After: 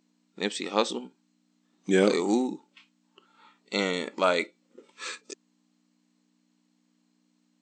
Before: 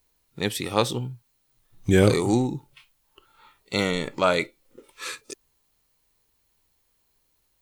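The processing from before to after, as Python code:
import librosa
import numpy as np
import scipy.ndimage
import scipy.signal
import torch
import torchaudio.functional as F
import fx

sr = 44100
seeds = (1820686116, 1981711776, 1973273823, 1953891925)

y = fx.add_hum(x, sr, base_hz=60, snr_db=30)
y = fx.brickwall_bandpass(y, sr, low_hz=180.0, high_hz=8300.0)
y = y * 10.0 ** (-2.5 / 20.0)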